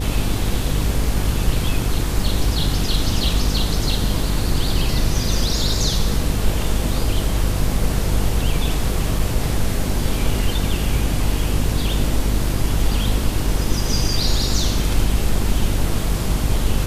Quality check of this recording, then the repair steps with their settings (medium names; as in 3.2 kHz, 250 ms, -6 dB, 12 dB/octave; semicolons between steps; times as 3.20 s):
buzz 50 Hz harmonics 10 -23 dBFS
9.19 s: dropout 3.3 ms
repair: de-hum 50 Hz, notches 10; interpolate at 9.19 s, 3.3 ms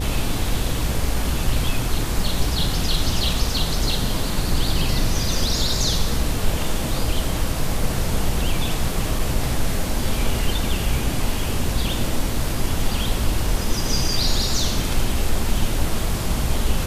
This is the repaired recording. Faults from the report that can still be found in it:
nothing left